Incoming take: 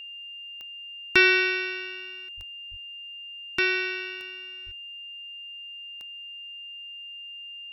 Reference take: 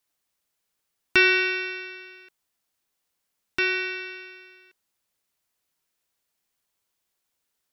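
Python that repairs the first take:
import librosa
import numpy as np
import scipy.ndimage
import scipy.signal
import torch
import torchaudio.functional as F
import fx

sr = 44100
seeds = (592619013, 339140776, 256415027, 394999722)

y = fx.fix_declick_ar(x, sr, threshold=10.0)
y = fx.notch(y, sr, hz=2800.0, q=30.0)
y = fx.highpass(y, sr, hz=140.0, slope=24, at=(2.36, 2.48), fade=0.02)
y = fx.highpass(y, sr, hz=140.0, slope=24, at=(2.7, 2.82), fade=0.02)
y = fx.highpass(y, sr, hz=140.0, slope=24, at=(4.65, 4.77), fade=0.02)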